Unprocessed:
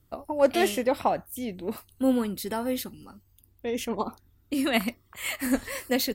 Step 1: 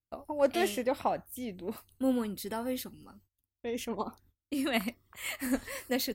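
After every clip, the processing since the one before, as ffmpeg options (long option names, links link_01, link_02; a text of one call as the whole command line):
ffmpeg -i in.wav -af "agate=range=-26dB:threshold=-56dB:ratio=16:detection=peak,volume=-5.5dB" out.wav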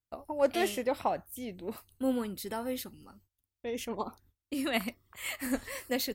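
ffmpeg -i in.wav -af "equalizer=frequency=230:width=1.5:gain=-2" out.wav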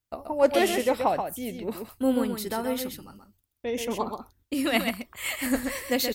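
ffmpeg -i in.wav -af "aecho=1:1:129:0.473,volume=6dB" out.wav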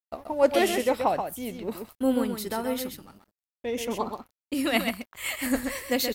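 ffmpeg -i in.wav -af "aeval=exprs='sgn(val(0))*max(abs(val(0))-0.00211,0)':channel_layout=same" out.wav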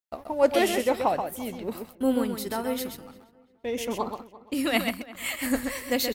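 ffmpeg -i in.wav -filter_complex "[0:a]asplit=2[link_01][link_02];[link_02]adelay=344,lowpass=frequency=2400:poles=1,volume=-19dB,asplit=2[link_03][link_04];[link_04]adelay=344,lowpass=frequency=2400:poles=1,volume=0.31,asplit=2[link_05][link_06];[link_06]adelay=344,lowpass=frequency=2400:poles=1,volume=0.31[link_07];[link_01][link_03][link_05][link_07]amix=inputs=4:normalize=0" out.wav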